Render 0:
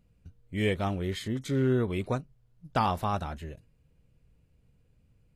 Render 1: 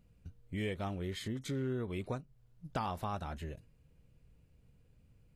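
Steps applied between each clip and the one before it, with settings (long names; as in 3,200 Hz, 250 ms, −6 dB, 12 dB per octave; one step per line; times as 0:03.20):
downward compressor 2.5 to 1, threshold −38 dBFS, peak gain reduction 11 dB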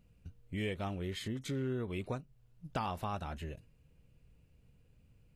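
parametric band 2,700 Hz +4.5 dB 0.29 octaves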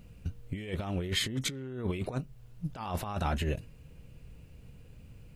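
compressor whose output falls as the input rises −41 dBFS, ratio −0.5
level +9 dB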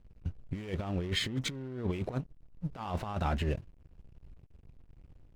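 high-frequency loss of the air 58 metres
slack as between gear wheels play −43 dBFS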